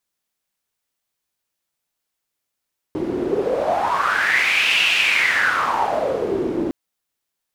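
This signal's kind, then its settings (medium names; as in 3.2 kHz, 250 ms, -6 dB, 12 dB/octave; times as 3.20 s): wind-like swept noise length 3.76 s, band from 320 Hz, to 2.7 kHz, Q 6.4, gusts 1, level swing 5 dB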